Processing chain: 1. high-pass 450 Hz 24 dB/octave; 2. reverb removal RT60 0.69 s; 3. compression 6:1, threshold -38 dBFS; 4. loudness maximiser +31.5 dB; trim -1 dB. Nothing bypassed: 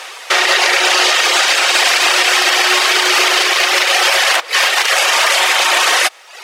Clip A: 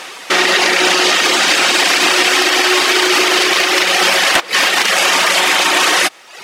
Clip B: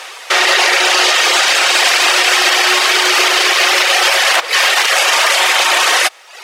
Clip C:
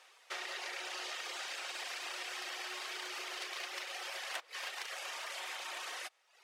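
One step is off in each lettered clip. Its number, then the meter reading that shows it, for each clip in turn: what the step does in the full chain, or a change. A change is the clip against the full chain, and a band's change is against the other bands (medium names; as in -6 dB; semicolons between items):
1, 250 Hz band +9.0 dB; 3, mean gain reduction 3.5 dB; 4, crest factor change +6.0 dB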